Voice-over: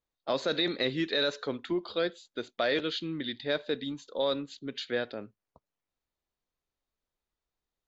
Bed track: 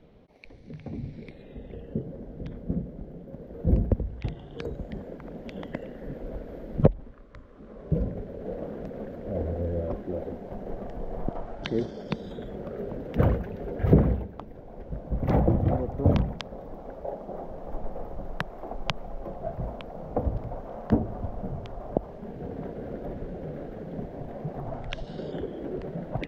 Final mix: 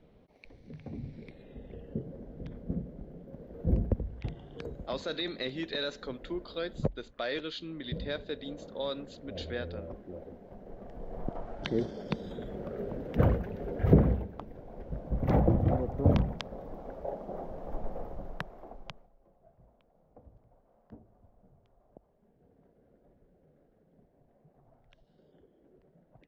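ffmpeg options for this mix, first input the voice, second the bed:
ffmpeg -i stem1.wav -i stem2.wav -filter_complex "[0:a]adelay=4600,volume=-6dB[link_01];[1:a]volume=4dB,afade=type=out:start_time=4.47:duration=0.74:silence=0.473151,afade=type=in:start_time=10.72:duration=0.94:silence=0.354813,afade=type=out:start_time=17.94:duration=1.16:silence=0.0501187[link_02];[link_01][link_02]amix=inputs=2:normalize=0" out.wav

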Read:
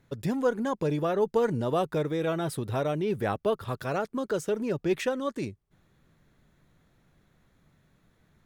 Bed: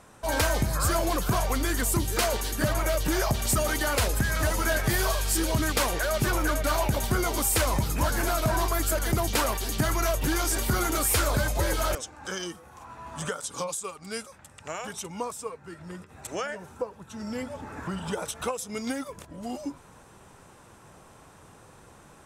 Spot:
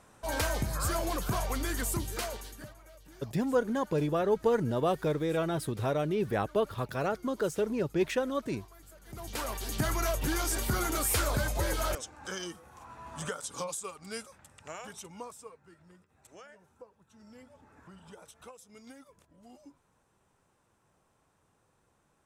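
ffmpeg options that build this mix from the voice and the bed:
ffmpeg -i stem1.wav -i stem2.wav -filter_complex "[0:a]adelay=3100,volume=-1.5dB[link_01];[1:a]volume=18dB,afade=type=out:start_time=1.85:duration=0.9:silence=0.0749894,afade=type=in:start_time=9.05:duration=0.76:silence=0.0630957,afade=type=out:start_time=14.05:duration=1.95:silence=0.177828[link_02];[link_01][link_02]amix=inputs=2:normalize=0" out.wav

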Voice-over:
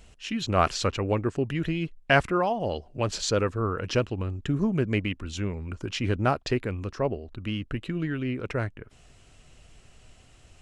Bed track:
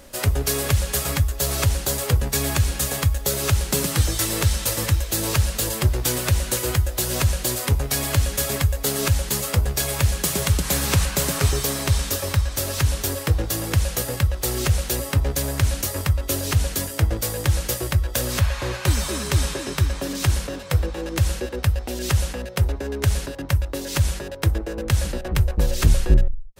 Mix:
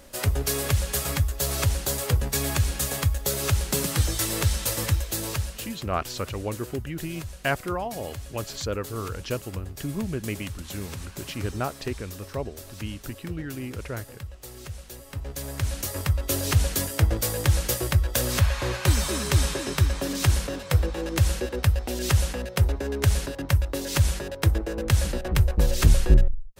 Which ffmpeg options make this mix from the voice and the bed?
ffmpeg -i stem1.wav -i stem2.wav -filter_complex "[0:a]adelay=5350,volume=-5dB[link_01];[1:a]volume=13.5dB,afade=type=out:start_time=4.93:duration=0.83:silence=0.188365,afade=type=in:start_time=15.05:duration=1.46:silence=0.141254[link_02];[link_01][link_02]amix=inputs=2:normalize=0" out.wav

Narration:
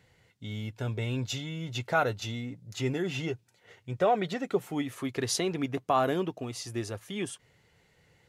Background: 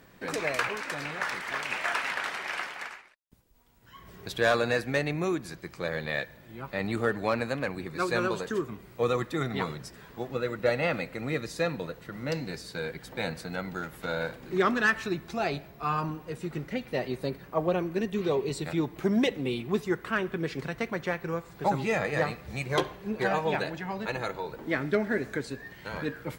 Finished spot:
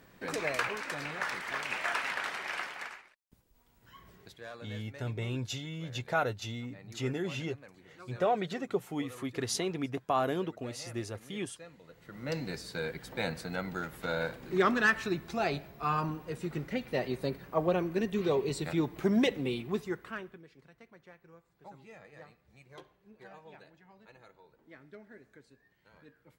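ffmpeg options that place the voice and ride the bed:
ffmpeg -i stem1.wav -i stem2.wav -filter_complex "[0:a]adelay=4200,volume=-3.5dB[link_01];[1:a]volume=17.5dB,afade=type=out:start_time=3.89:duration=0.48:silence=0.112202,afade=type=in:start_time=11.84:duration=0.64:silence=0.0944061,afade=type=out:start_time=19.35:duration=1.09:silence=0.0707946[link_02];[link_01][link_02]amix=inputs=2:normalize=0" out.wav

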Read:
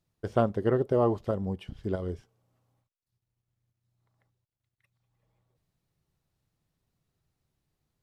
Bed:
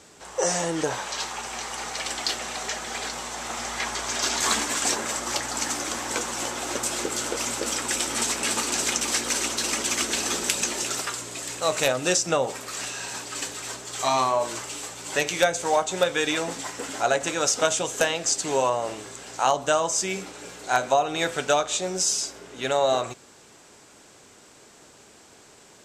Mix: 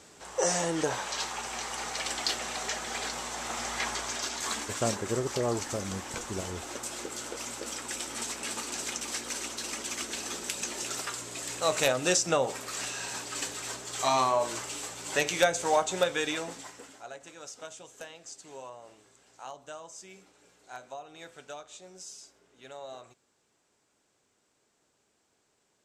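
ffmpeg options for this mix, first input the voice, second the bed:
ffmpeg -i stem1.wav -i stem2.wav -filter_complex "[0:a]adelay=4450,volume=-5.5dB[link_01];[1:a]volume=4dB,afade=type=out:start_time=3.9:duration=0.4:silence=0.446684,afade=type=in:start_time=10.49:duration=1.1:silence=0.446684,afade=type=out:start_time=15.86:duration=1.14:silence=0.11885[link_02];[link_01][link_02]amix=inputs=2:normalize=0" out.wav

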